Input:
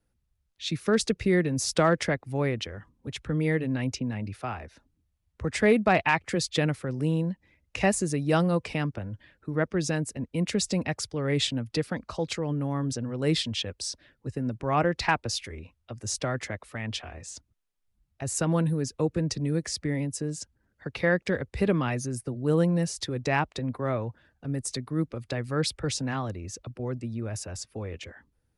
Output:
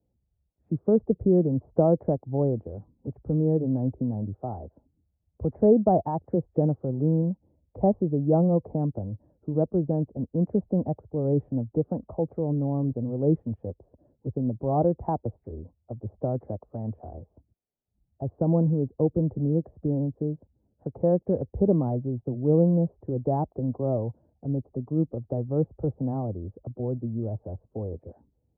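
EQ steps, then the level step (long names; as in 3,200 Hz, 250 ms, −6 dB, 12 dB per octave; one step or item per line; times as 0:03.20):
high-pass filter 54 Hz
Butterworth low-pass 780 Hz 36 dB per octave
+3.0 dB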